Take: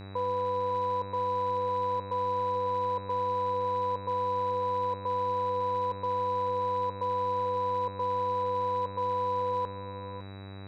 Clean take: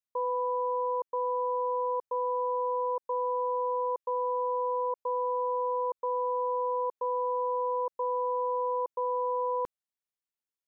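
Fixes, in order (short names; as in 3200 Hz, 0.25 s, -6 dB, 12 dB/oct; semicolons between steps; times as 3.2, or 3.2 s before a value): clip repair -24 dBFS; de-hum 97.6 Hz, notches 27; notch 3900 Hz, Q 30; inverse comb 0.556 s -12 dB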